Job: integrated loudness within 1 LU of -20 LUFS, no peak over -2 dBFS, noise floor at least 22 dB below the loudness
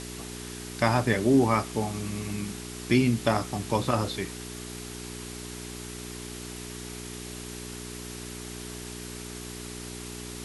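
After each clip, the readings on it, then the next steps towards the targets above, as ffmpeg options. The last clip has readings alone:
hum 60 Hz; highest harmonic 420 Hz; hum level -37 dBFS; noise floor -40 dBFS; noise floor target -53 dBFS; loudness -30.5 LUFS; peak level -7.0 dBFS; loudness target -20.0 LUFS
-> -af "bandreject=f=60:t=h:w=4,bandreject=f=120:t=h:w=4,bandreject=f=180:t=h:w=4,bandreject=f=240:t=h:w=4,bandreject=f=300:t=h:w=4,bandreject=f=360:t=h:w=4,bandreject=f=420:t=h:w=4"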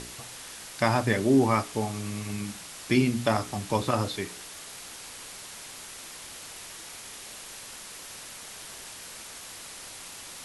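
hum not found; noise floor -43 dBFS; noise floor target -53 dBFS
-> -af "afftdn=nr=10:nf=-43"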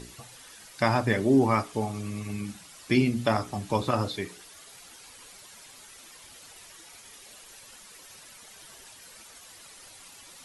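noise floor -50 dBFS; loudness -27.0 LUFS; peak level -8.0 dBFS; loudness target -20.0 LUFS
-> -af "volume=2.24,alimiter=limit=0.794:level=0:latency=1"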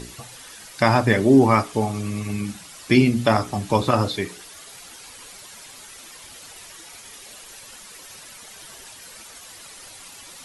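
loudness -20.0 LUFS; peak level -2.0 dBFS; noise floor -43 dBFS

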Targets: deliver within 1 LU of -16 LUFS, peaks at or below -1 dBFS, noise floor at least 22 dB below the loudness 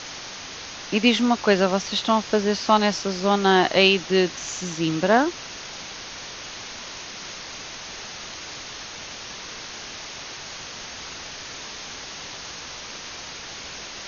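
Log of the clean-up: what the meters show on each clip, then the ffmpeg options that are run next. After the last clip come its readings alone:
noise floor -37 dBFS; noise floor target -47 dBFS; loudness -25.0 LUFS; peak level -2.5 dBFS; loudness target -16.0 LUFS
-> -af "afftdn=nr=10:nf=-37"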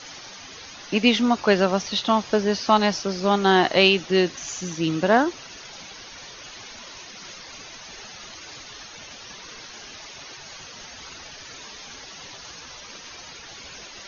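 noise floor -42 dBFS; noise floor target -43 dBFS
-> -af "afftdn=nr=6:nf=-42"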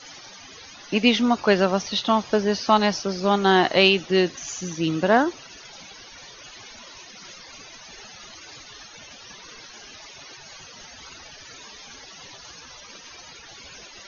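noise floor -45 dBFS; loudness -21.0 LUFS; peak level -2.5 dBFS; loudness target -16.0 LUFS
-> -af "volume=1.78,alimiter=limit=0.891:level=0:latency=1"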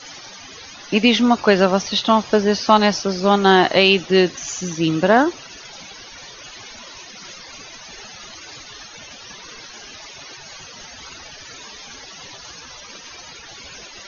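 loudness -16.5 LUFS; peak level -1.0 dBFS; noise floor -40 dBFS

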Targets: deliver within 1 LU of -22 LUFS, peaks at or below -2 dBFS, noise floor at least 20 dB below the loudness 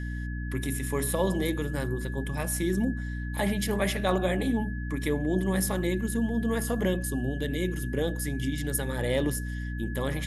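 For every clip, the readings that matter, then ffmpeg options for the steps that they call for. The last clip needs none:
hum 60 Hz; highest harmonic 300 Hz; hum level -31 dBFS; steady tone 1.7 kHz; tone level -42 dBFS; loudness -29.0 LUFS; peak level -10.5 dBFS; loudness target -22.0 LUFS
-> -af "bandreject=f=60:t=h:w=6,bandreject=f=120:t=h:w=6,bandreject=f=180:t=h:w=6,bandreject=f=240:t=h:w=6,bandreject=f=300:t=h:w=6"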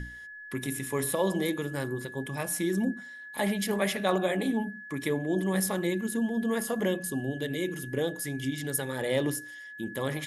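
hum not found; steady tone 1.7 kHz; tone level -42 dBFS
-> -af "bandreject=f=1700:w=30"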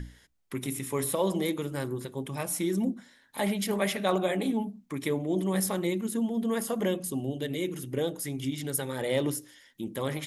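steady tone not found; loudness -30.5 LUFS; peak level -11.5 dBFS; loudness target -22.0 LUFS
-> -af "volume=2.66"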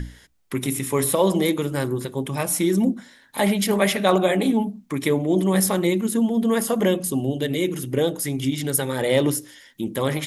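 loudness -22.0 LUFS; peak level -3.0 dBFS; noise floor -53 dBFS

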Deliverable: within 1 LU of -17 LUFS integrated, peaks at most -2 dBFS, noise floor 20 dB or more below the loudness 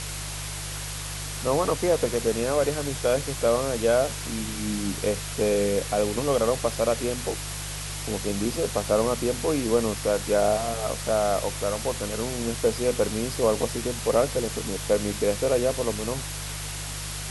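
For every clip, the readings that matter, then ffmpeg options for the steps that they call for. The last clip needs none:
hum 50 Hz; highest harmonic 150 Hz; hum level -35 dBFS; noise floor -34 dBFS; noise floor target -46 dBFS; loudness -26.0 LUFS; peak level -9.0 dBFS; loudness target -17.0 LUFS
-> -af "bandreject=f=50:t=h:w=4,bandreject=f=100:t=h:w=4,bandreject=f=150:t=h:w=4"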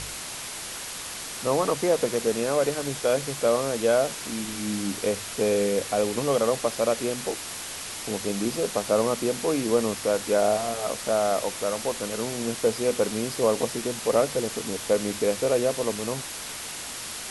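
hum not found; noise floor -36 dBFS; noise floor target -46 dBFS
-> -af "afftdn=nr=10:nf=-36"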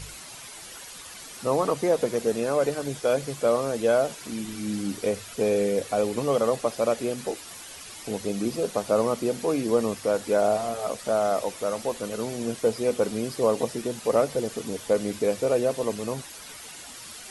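noise floor -43 dBFS; noise floor target -47 dBFS
-> -af "afftdn=nr=6:nf=-43"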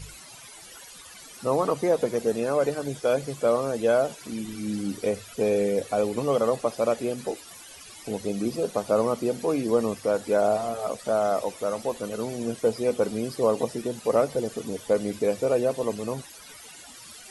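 noise floor -46 dBFS; noise floor target -47 dBFS
-> -af "afftdn=nr=6:nf=-46"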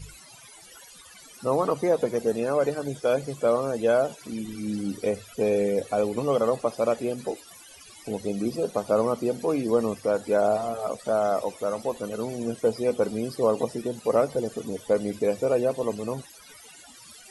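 noise floor -49 dBFS; loudness -26.5 LUFS; peak level -10.0 dBFS; loudness target -17.0 LUFS
-> -af "volume=2.99,alimiter=limit=0.794:level=0:latency=1"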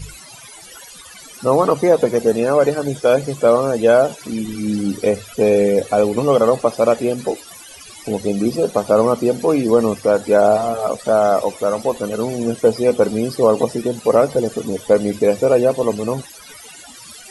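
loudness -17.0 LUFS; peak level -2.0 dBFS; noise floor -40 dBFS

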